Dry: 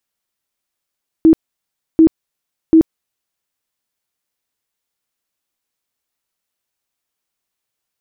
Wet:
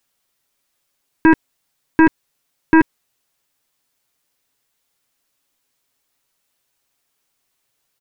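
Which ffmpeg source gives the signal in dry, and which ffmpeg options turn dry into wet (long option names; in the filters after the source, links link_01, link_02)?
-f lavfi -i "aevalsrc='0.631*sin(2*PI*322*mod(t,0.74))*lt(mod(t,0.74),26/322)':duration=2.22:sample_rate=44100"
-af "aeval=exprs='0.668*(cos(1*acos(clip(val(0)/0.668,-1,1)))-cos(1*PI/2))+0.237*(cos(5*acos(clip(val(0)/0.668,-1,1)))-cos(5*PI/2))+0.0376*(cos(7*acos(clip(val(0)/0.668,-1,1)))-cos(7*PI/2))+0.0531*(cos(8*acos(clip(val(0)/0.668,-1,1)))-cos(8*PI/2))':channel_layout=same,aecho=1:1:7.3:0.42"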